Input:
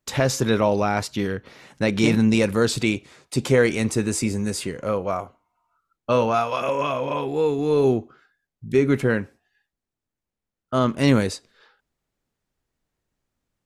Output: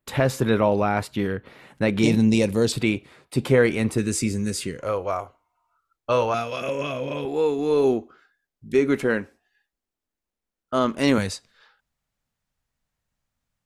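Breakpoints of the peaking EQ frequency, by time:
peaking EQ -11.5 dB 0.92 oct
5.9 kHz
from 2.03 s 1.4 kHz
from 2.72 s 6.4 kHz
from 3.98 s 830 Hz
from 4.79 s 200 Hz
from 6.34 s 950 Hz
from 7.25 s 120 Hz
from 11.18 s 360 Hz

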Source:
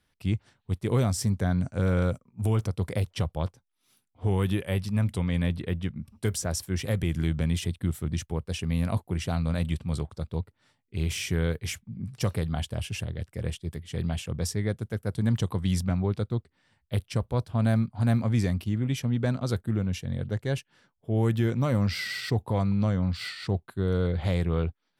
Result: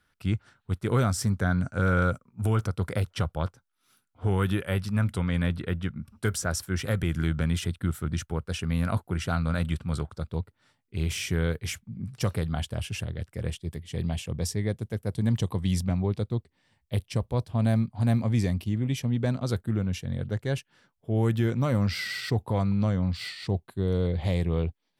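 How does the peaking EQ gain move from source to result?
peaking EQ 1.4 kHz 0.43 oct
9.99 s +11.5 dB
10.41 s +3 dB
13.35 s +3 dB
13.91 s -6 dB
19.12 s -6 dB
19.64 s +1 dB
22.80 s +1 dB
23.35 s -9.5 dB

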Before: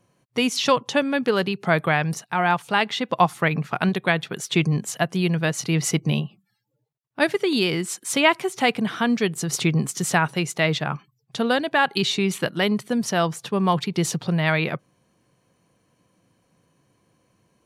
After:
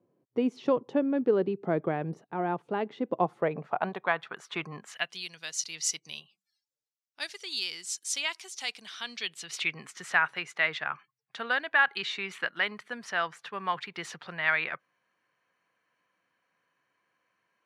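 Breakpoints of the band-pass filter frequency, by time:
band-pass filter, Q 1.8
3.15 s 360 Hz
4.23 s 1.2 kHz
4.80 s 1.2 kHz
5.26 s 5.6 kHz
8.81 s 5.6 kHz
9.95 s 1.7 kHz

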